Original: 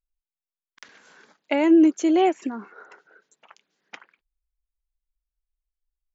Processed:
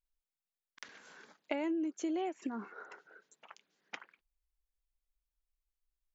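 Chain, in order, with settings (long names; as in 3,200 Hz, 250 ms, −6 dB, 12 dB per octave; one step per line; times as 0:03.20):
downward compressor 12 to 1, threshold −29 dBFS, peak gain reduction 17 dB
level −3.5 dB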